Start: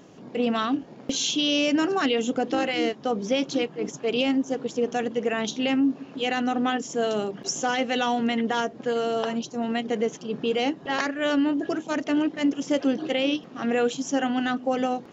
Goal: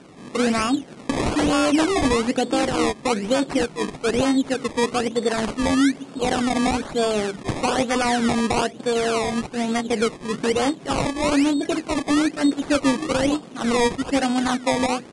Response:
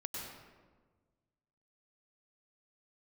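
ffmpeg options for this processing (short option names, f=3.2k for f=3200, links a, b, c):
-af "acrusher=samples=21:mix=1:aa=0.000001:lfo=1:lforange=21:lforate=1.1,aresample=22050,aresample=44100,volume=4dB"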